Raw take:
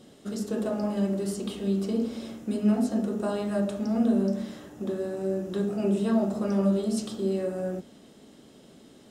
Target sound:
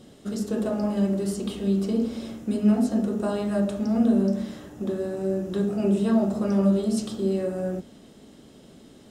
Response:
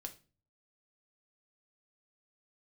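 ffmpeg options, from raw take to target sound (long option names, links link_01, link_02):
-af "lowshelf=frequency=110:gain=8.5,volume=1.5dB"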